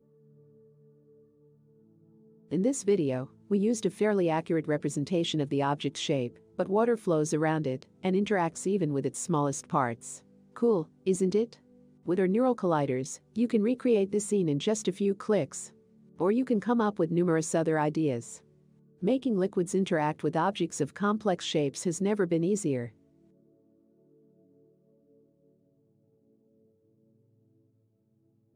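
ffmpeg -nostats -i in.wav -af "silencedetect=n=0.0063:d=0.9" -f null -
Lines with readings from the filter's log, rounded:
silence_start: 0.00
silence_end: 2.51 | silence_duration: 2.51
silence_start: 22.89
silence_end: 28.55 | silence_duration: 5.66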